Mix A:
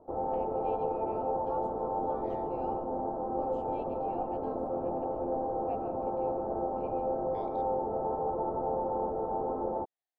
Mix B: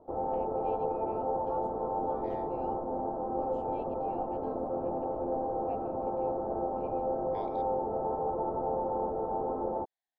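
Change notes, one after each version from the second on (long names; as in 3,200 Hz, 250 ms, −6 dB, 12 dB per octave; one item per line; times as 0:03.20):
second voice +4.0 dB
reverb: off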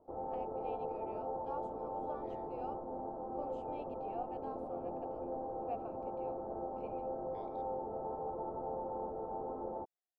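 second voice −11.5 dB
background −8.5 dB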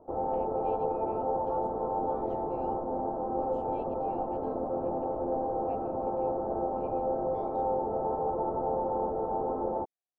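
background +10.0 dB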